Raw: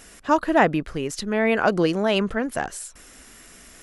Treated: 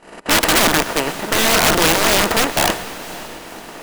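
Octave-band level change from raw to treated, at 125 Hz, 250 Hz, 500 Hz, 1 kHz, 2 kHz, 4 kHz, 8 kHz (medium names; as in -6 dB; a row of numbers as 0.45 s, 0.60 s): +4.0 dB, +1.5 dB, +2.5 dB, +6.0 dB, +9.0 dB, +16.5 dB, +18.5 dB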